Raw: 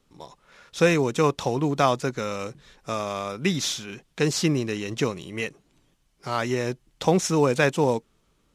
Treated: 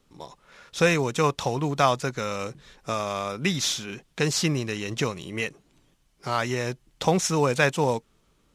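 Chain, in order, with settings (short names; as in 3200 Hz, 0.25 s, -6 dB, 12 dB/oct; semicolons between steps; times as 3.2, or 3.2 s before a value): dynamic EQ 310 Hz, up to -6 dB, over -33 dBFS, Q 0.86; gain +1.5 dB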